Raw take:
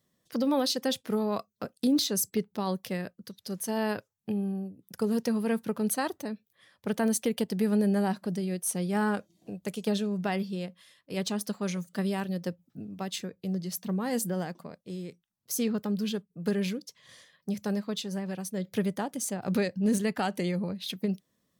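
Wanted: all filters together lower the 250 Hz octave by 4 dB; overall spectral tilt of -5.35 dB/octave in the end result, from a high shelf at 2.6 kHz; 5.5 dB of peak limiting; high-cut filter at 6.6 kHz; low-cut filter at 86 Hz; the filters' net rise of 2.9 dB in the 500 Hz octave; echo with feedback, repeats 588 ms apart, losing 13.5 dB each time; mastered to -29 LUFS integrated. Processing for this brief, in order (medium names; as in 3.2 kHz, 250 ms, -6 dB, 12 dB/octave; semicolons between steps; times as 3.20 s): high-pass 86 Hz; low-pass 6.6 kHz; peaking EQ 250 Hz -6 dB; peaking EQ 500 Hz +5.5 dB; treble shelf 2.6 kHz -6.5 dB; peak limiter -21 dBFS; feedback delay 588 ms, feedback 21%, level -13.5 dB; trim +4.5 dB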